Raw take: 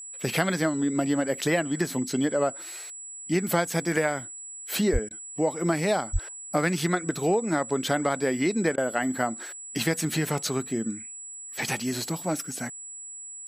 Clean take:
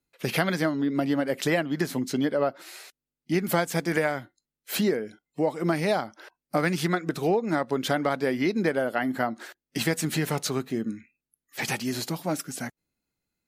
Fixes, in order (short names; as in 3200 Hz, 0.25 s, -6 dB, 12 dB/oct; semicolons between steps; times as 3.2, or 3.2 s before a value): notch 7800 Hz, Q 30; 4.92–5.04 HPF 140 Hz 24 dB/oct; 6.12–6.24 HPF 140 Hz 24 dB/oct; interpolate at 5.09/8.76, 16 ms